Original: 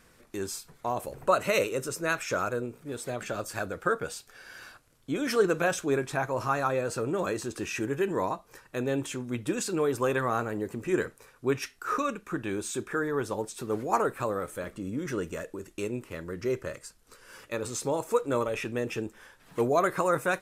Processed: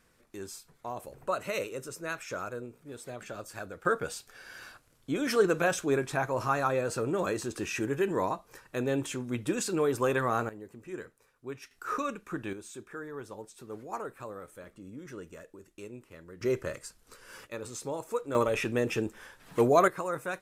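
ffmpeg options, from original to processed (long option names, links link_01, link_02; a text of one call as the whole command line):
ffmpeg -i in.wav -af "asetnsamples=nb_out_samples=441:pad=0,asendcmd='3.85 volume volume -0.5dB;10.49 volume volume -13dB;11.71 volume volume -3.5dB;12.53 volume volume -11.5dB;16.41 volume volume 0.5dB;17.47 volume volume -6.5dB;18.35 volume volume 2.5dB;19.88 volume volume -7.5dB',volume=-7.5dB" out.wav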